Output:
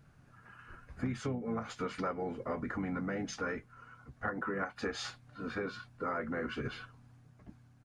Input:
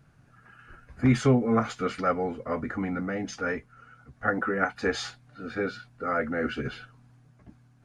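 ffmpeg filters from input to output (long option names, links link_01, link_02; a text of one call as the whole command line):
ffmpeg -i in.wav -filter_complex "[0:a]acompressor=threshold=-30dB:ratio=12,asplit=2[link_01][link_02];[link_02]asetrate=33038,aresample=44100,atempo=1.33484,volume=-11dB[link_03];[link_01][link_03]amix=inputs=2:normalize=0,volume=-2.5dB" out.wav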